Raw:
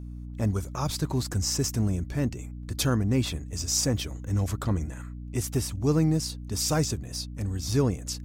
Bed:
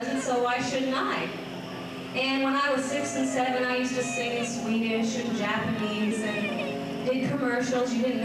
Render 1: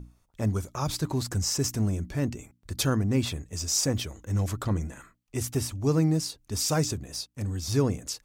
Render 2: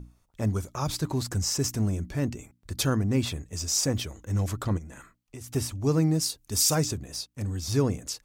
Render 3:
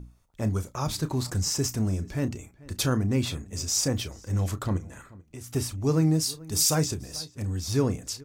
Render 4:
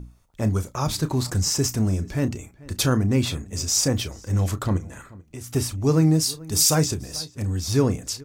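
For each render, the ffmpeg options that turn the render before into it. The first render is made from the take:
-af "bandreject=f=60:t=h:w=6,bandreject=f=120:t=h:w=6,bandreject=f=180:t=h:w=6,bandreject=f=240:t=h:w=6,bandreject=f=300:t=h:w=6"
-filter_complex "[0:a]asplit=3[a][b][c];[a]afade=t=out:st=4.77:d=0.02[d];[b]acompressor=threshold=-38dB:ratio=6:attack=3.2:release=140:knee=1:detection=peak,afade=t=in:st=4.77:d=0.02,afade=t=out:st=5.51:d=0.02[e];[c]afade=t=in:st=5.51:d=0.02[f];[d][e][f]amix=inputs=3:normalize=0,asettb=1/sr,asplit=3[g][h][i];[g]atrim=end=6.214[j];[h]atrim=start=6.21:end=6.75,asetpts=PTS-STARTPTS,afade=t=in:d=0.004:c=qsin,afade=t=out:st=0.536:d=0.004:c=qsin,aemphasis=mode=production:type=cd[k];[i]atrim=start=6.746[l];[j][k]acrossfade=d=0.004:c1=hsin:c2=qsin[m];[m][l]acrossfade=d=0.004:c1=qsin:c2=hsin"
-filter_complex "[0:a]asplit=2[a][b];[b]adelay=32,volume=-13dB[c];[a][c]amix=inputs=2:normalize=0,asplit=2[d][e];[e]adelay=437.3,volume=-21dB,highshelf=f=4k:g=-9.84[f];[d][f]amix=inputs=2:normalize=0"
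-af "volume=4.5dB"

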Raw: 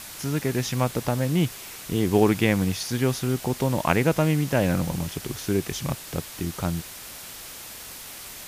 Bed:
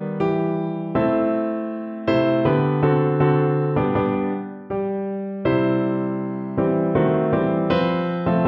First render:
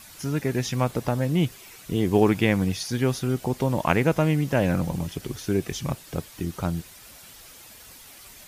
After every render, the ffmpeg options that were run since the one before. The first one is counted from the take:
-af "afftdn=nr=9:nf=-40"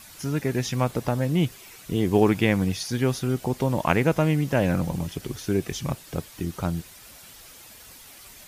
-af anull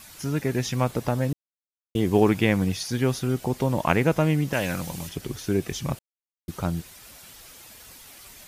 -filter_complex "[0:a]asettb=1/sr,asplit=3[a][b][c];[a]atrim=end=4.534[d];[b]atrim=start=4.53:end=5.09,asetpts=PTS-STARTPTS,afade=t=in:d=0.004:c=qsin,afade=t=out:st=0.556:d=0.004:c=qsin,tiltshelf=f=1.3k:g=-7[e];[c]atrim=start=5.086[f];[d][e]acrossfade=d=0.004:c1=hsin:c2=qsin[g];[g][f]acrossfade=d=0.004:c1=qsin:c2=hsin,asplit=5[h][i][j][k][l];[h]atrim=end=1.33,asetpts=PTS-STARTPTS,afade=t=out:st=1.326:d=0.004:c=hsin[m];[i]atrim=start=1.33:end=1.95,asetpts=PTS-STARTPTS,volume=0[n];[j]atrim=start=1.95:end=5.99,asetpts=PTS-STARTPTS,afade=t=in:d=0.004:c=hsin,afade=t=out:st=4.036:d=0.004:c=hsin[o];[k]atrim=start=5.99:end=6.48,asetpts=PTS-STARTPTS,volume=0[p];[l]atrim=start=6.48,asetpts=PTS-STARTPTS,afade=t=in:d=0.004:c=hsin[q];[m][n][o][p][q]concat=n=5:v=0:a=1"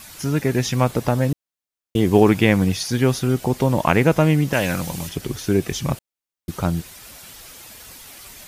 -af "volume=5.5dB,alimiter=limit=-2dB:level=0:latency=1"

